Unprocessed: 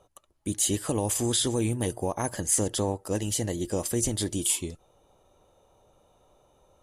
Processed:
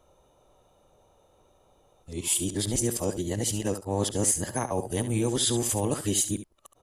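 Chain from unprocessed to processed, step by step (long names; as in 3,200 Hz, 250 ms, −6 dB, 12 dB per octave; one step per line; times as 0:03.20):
played backwards from end to start
single-tap delay 70 ms −11.5 dB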